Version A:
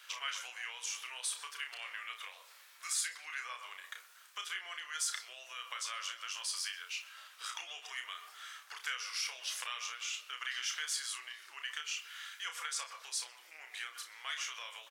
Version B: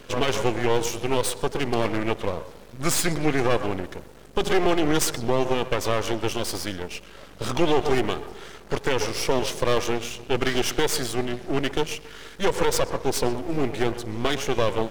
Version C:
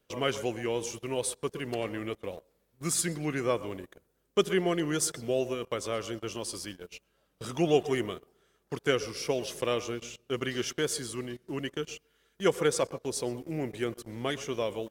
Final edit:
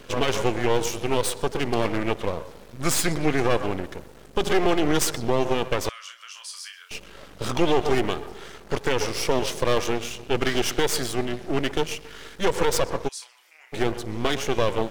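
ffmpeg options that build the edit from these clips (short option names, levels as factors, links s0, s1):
-filter_complex "[0:a]asplit=2[s0][s1];[1:a]asplit=3[s2][s3][s4];[s2]atrim=end=5.892[s5];[s0]atrim=start=5.888:end=6.912[s6];[s3]atrim=start=6.908:end=13.09[s7];[s1]atrim=start=13.07:end=13.74[s8];[s4]atrim=start=13.72[s9];[s5][s6]acrossfade=d=0.004:c1=hsin:c2=hsin[s10];[s10][s7]acrossfade=d=0.004:c1=hsin:c2=hsin[s11];[s11][s8]acrossfade=d=0.02:c1=tri:c2=tri[s12];[s12][s9]acrossfade=d=0.02:c1=tri:c2=tri"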